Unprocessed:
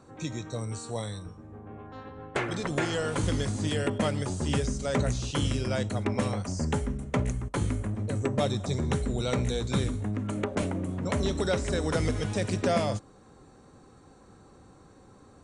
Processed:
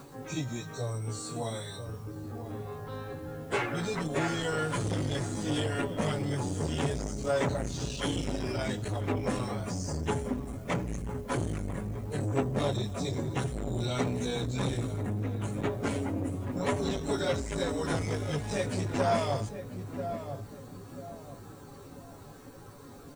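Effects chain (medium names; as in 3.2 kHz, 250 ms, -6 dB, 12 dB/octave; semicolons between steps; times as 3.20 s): comb 7.1 ms, depth 37%; in parallel at +2.5 dB: compression 6:1, threshold -42 dBFS, peak gain reduction 20 dB; on the sum: word length cut 10-bit, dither triangular; plain phase-vocoder stretch 1.5×; on a send: filtered feedback delay 990 ms, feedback 37%, low-pass 1.1 kHz, level -9.5 dB; on the sum: transformer saturation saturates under 660 Hz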